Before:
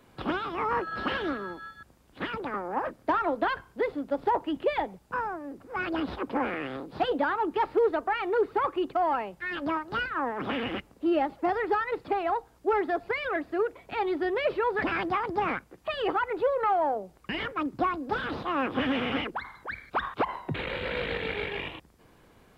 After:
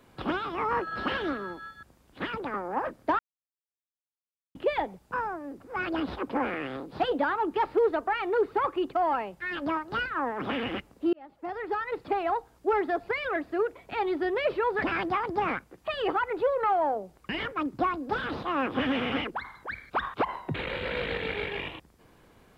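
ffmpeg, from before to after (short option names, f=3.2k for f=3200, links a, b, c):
-filter_complex "[0:a]asplit=4[a][b][c][d];[a]atrim=end=3.19,asetpts=PTS-STARTPTS,afade=t=out:st=3.186:d=0.004:c=hsin[e];[b]atrim=start=3.19:end=4.55,asetpts=PTS-STARTPTS,volume=0[f];[c]atrim=start=4.55:end=11.13,asetpts=PTS-STARTPTS,afade=t=in:d=0.004:c=hsin,afade=t=out:st=6.576:d=0.004:c=hsin[g];[d]atrim=start=11.13,asetpts=PTS-STARTPTS,afade=t=in:d=0.98[h];[e][f][g][h]concat=n=4:v=0:a=1"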